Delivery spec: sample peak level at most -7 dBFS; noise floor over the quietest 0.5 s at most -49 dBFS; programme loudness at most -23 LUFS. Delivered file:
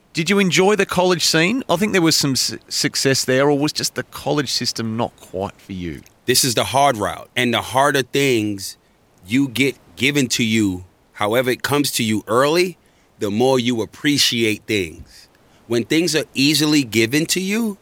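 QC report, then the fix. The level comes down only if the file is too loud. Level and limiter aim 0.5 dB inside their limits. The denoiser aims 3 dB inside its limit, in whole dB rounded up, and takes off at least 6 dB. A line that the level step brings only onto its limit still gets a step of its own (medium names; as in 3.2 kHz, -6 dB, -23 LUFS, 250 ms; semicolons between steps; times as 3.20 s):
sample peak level -3.0 dBFS: fail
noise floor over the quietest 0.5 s -54 dBFS: pass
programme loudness -18.0 LUFS: fail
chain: trim -5.5 dB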